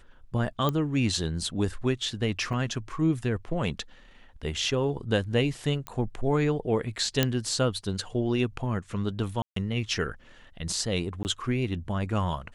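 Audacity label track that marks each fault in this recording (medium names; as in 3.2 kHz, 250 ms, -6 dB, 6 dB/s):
0.690000	0.690000	pop -14 dBFS
2.530000	2.530000	dropout 2.7 ms
5.870000	5.870000	pop -19 dBFS
7.230000	7.230000	pop -7 dBFS
9.420000	9.560000	dropout 143 ms
11.230000	11.250000	dropout 19 ms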